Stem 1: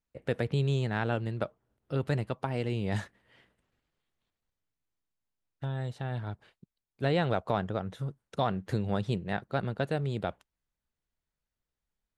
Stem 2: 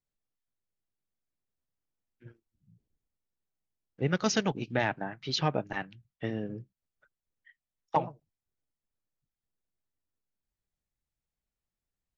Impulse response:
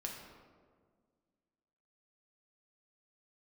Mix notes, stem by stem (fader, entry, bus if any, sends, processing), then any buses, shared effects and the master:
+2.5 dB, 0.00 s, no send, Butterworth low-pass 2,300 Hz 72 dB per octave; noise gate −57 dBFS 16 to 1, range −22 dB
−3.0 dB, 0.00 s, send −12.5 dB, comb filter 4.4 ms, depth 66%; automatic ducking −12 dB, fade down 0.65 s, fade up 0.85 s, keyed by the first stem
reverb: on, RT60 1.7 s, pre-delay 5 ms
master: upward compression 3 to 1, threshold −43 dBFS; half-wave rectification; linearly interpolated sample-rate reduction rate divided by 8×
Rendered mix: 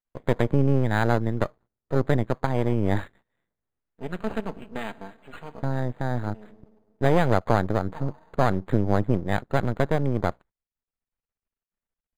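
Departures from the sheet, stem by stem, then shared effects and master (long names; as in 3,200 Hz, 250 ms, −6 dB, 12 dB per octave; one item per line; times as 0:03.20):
stem 1 +2.5 dB → +10.5 dB
master: missing upward compression 3 to 1, threshold −43 dBFS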